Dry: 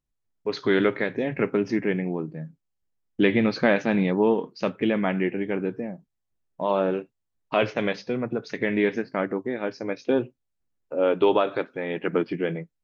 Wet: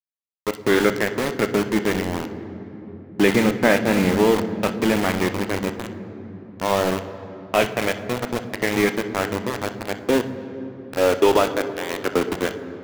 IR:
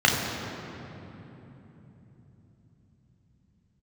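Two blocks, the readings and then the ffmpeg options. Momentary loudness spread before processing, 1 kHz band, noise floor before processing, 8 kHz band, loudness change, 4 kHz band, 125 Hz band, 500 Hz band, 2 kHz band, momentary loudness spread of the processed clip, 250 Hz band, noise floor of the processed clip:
11 LU, +5.5 dB, −79 dBFS, can't be measured, +3.5 dB, +8.0 dB, +4.0 dB, +3.0 dB, +5.0 dB, 17 LU, +3.0 dB, −41 dBFS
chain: -filter_complex "[0:a]aeval=exprs='val(0)*gte(abs(val(0)),0.0708)':channel_layout=same,asplit=2[link_01][link_02];[1:a]atrim=start_sample=2205,adelay=29[link_03];[link_02][link_03]afir=irnorm=-1:irlink=0,volume=-27.5dB[link_04];[link_01][link_04]amix=inputs=2:normalize=0,volume=3.5dB"

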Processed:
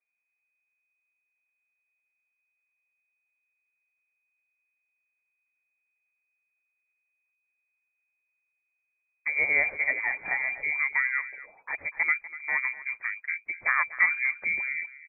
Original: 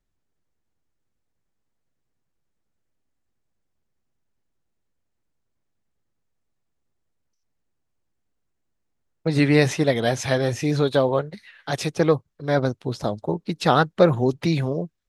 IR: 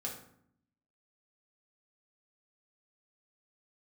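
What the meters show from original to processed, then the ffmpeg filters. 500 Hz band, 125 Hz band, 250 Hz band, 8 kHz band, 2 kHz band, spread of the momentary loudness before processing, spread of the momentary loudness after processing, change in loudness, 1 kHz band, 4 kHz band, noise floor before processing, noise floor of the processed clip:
−24.5 dB, below −35 dB, −33.5 dB, below −40 dB, +6.5 dB, 10 LU, 10 LU, −4.5 dB, −10.5 dB, below −40 dB, −75 dBFS, −81 dBFS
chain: -filter_complex "[0:a]asplit=2[link_01][link_02];[link_02]aecho=0:1:244:0.158[link_03];[link_01][link_03]amix=inputs=2:normalize=0,lowpass=frequency=2100:width_type=q:width=0.5098,lowpass=frequency=2100:width_type=q:width=0.6013,lowpass=frequency=2100:width_type=q:width=0.9,lowpass=frequency=2100:width_type=q:width=2.563,afreqshift=-2500,volume=-7.5dB"

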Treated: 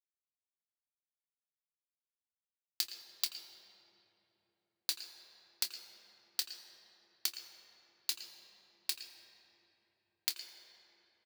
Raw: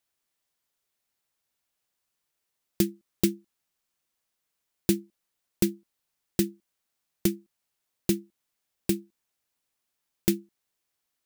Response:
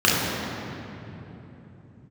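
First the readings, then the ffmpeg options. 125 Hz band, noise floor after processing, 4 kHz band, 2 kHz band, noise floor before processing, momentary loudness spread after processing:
below −40 dB, below −85 dBFS, +3.0 dB, −5.0 dB, −82 dBFS, 19 LU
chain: -filter_complex "[0:a]highpass=frequency=870:width=0.5412,highpass=frequency=870:width=1.3066,equalizer=frequency=4500:width_type=o:width=0.47:gain=14.5,acompressor=threshold=-27dB:ratio=6,aeval=exprs='sgn(val(0))*max(abs(val(0))-0.00355,0)':channel_layout=same,asplit=2[link_01][link_02];[link_02]adelay=26,volume=-13dB[link_03];[link_01][link_03]amix=inputs=2:normalize=0,asplit=2[link_04][link_05];[1:a]atrim=start_sample=2205,adelay=82[link_06];[link_05][link_06]afir=irnorm=-1:irlink=0,volume=-29dB[link_07];[link_04][link_07]amix=inputs=2:normalize=0,volume=-2.5dB"

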